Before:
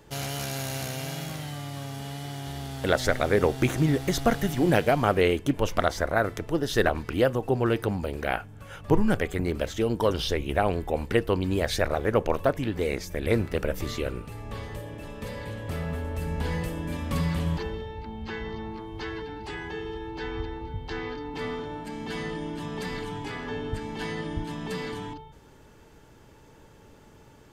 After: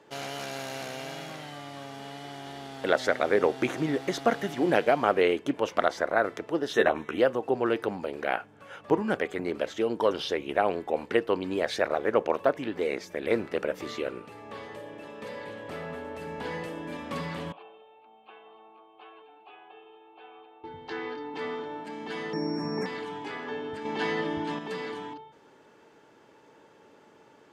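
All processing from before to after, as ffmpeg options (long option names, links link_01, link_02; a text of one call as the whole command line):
ffmpeg -i in.wav -filter_complex "[0:a]asettb=1/sr,asplit=3[link_01][link_02][link_03];[link_01]atrim=end=6.734[link_04];[link_02]atrim=start=6.73:end=7.18,asetpts=PTS-STARTPTS,afade=type=in:duration=0.004:curve=qsin,afade=type=out:start_time=0.446:duration=0.004:curve=qsin,asuperstop=centerf=4700:order=12:qfactor=3.8,asplit=2[link_05][link_06];[link_06]adelay=13,volume=-4.5dB[link_07];[link_05][link_07]amix=inputs=2:normalize=0,atrim=end_sample=19845[link_08];[link_03]atrim=start=7.176[link_09];[link_04][link_08]acrossfade=duration=0.004:curve1=hsin:curve2=qsin[link_10];[link_10][link_09]acrossfade=duration=0.004:curve1=qsin:curve2=hsin,asettb=1/sr,asplit=3[link_11][link_12][link_13];[link_11]atrim=end=17.524[link_14];[link_12]atrim=start=17.52:end=20.64,asetpts=PTS-STARTPTS,afade=type=in:duration=0.004:curve=qsin,afade=type=out:start_time=3.116:duration=0.004:curve=qsin,asplit=3[link_15][link_16][link_17];[link_15]bandpass=frequency=730:width_type=q:width=8,volume=0dB[link_18];[link_16]bandpass=frequency=1090:width_type=q:width=8,volume=-6dB[link_19];[link_17]bandpass=frequency=2440:width_type=q:width=8,volume=-9dB[link_20];[link_18][link_19][link_20]amix=inputs=3:normalize=0,highshelf=frequency=4400:width_type=q:width=3:gain=-9[link_21];[link_13]atrim=start=20.636[link_22];[link_14][link_21]acrossfade=duration=0.004:curve1=hsin:curve2=qsin[link_23];[link_23][link_22]acrossfade=duration=0.004:curve1=qsin:curve2=hsin,asettb=1/sr,asplit=3[link_24][link_25][link_26];[link_24]atrim=end=22.334[link_27];[link_25]atrim=start=22.33:end=22.86,asetpts=PTS-STARTPTS,afade=type=in:duration=0.004:curve=qsin,afade=type=out:start_time=0.526:duration=0.004:curve=qsin,equalizer=frequency=150:width=0.41:gain=10.5,aeval=exprs='val(0)+0.0355*sin(2*PI*5500*n/s)':channel_layout=same,asuperstop=centerf=3800:order=20:qfactor=1.2[link_28];[link_26]atrim=start=22.856[link_29];[link_27][link_28]acrossfade=duration=0.004:curve1=hsin:curve2=qsin[link_30];[link_30][link_29]acrossfade=duration=0.004:curve1=qsin:curve2=hsin,asettb=1/sr,asplit=3[link_31][link_32][link_33];[link_31]atrim=end=23.854[link_34];[link_32]atrim=start=23.85:end=24.59,asetpts=PTS-STARTPTS,afade=type=in:duration=0.004:curve=qsin,afade=type=out:start_time=0.736:duration=0.004:curve=qsin,lowpass=7900,acontrast=48[link_35];[link_33]atrim=start=24.586[link_36];[link_34][link_35]acrossfade=duration=0.004:curve1=hsin:curve2=qsin[link_37];[link_37][link_36]acrossfade=duration=0.004:curve1=qsin:curve2=hsin,highpass=300,aemphasis=mode=reproduction:type=50fm" out.wav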